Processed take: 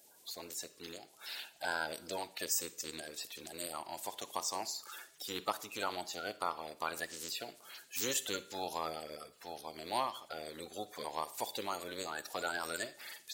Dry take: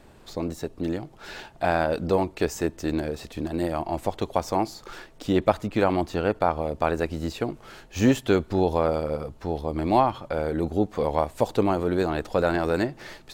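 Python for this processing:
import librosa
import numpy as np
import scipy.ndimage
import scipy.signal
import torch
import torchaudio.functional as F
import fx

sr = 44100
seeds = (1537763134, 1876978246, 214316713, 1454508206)

y = fx.spec_quant(x, sr, step_db=30)
y = np.diff(y, prepend=0.0)
y = fx.rev_schroeder(y, sr, rt60_s=0.54, comb_ms=38, drr_db=15.5)
y = F.gain(torch.from_numpy(y), 5.0).numpy()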